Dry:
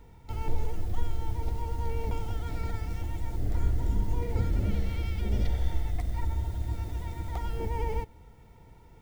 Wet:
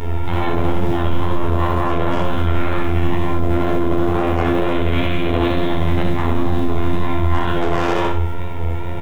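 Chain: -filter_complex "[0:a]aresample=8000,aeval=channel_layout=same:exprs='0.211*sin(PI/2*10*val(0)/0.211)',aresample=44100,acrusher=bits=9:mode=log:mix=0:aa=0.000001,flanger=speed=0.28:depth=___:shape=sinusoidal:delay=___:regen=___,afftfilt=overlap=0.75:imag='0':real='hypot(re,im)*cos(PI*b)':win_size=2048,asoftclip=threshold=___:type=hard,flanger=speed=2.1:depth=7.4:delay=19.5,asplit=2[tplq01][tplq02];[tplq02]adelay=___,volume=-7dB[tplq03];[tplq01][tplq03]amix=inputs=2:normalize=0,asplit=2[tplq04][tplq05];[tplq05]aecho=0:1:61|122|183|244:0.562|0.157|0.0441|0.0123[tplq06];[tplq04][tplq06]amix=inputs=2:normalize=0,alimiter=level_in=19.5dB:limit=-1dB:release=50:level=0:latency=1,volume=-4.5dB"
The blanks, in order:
1.2, 8.7, 70, -9dB, 26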